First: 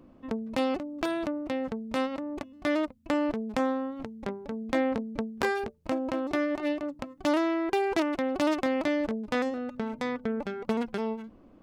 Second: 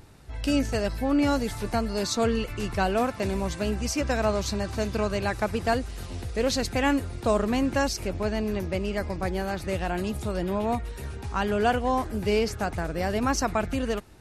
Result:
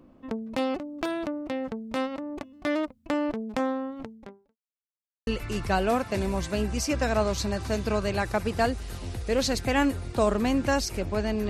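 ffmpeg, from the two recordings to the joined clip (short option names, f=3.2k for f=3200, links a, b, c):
-filter_complex "[0:a]apad=whole_dur=11.49,atrim=end=11.49,asplit=2[a][b];[a]atrim=end=4.57,asetpts=PTS-STARTPTS,afade=t=out:st=4.03:d=0.54:c=qua[c];[b]atrim=start=4.57:end=5.27,asetpts=PTS-STARTPTS,volume=0[d];[1:a]atrim=start=2.35:end=8.57,asetpts=PTS-STARTPTS,afade=t=in:d=0.004:c=hsin[e];[c][d][e]concat=n=3:v=0:a=1"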